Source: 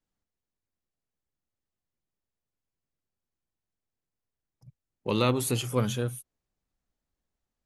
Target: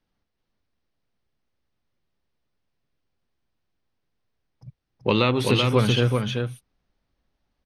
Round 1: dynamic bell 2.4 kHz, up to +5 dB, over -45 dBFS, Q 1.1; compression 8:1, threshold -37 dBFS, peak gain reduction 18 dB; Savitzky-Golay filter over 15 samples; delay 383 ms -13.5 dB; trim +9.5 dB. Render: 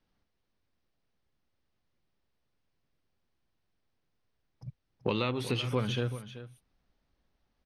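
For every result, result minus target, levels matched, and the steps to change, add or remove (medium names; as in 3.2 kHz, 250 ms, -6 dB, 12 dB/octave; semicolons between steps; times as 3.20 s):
compression: peak gain reduction +10.5 dB; echo-to-direct -9 dB
change: compression 8:1, threshold -25 dBFS, peak gain reduction 7.5 dB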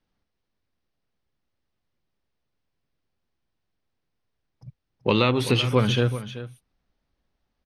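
echo-to-direct -9 dB
change: delay 383 ms -4.5 dB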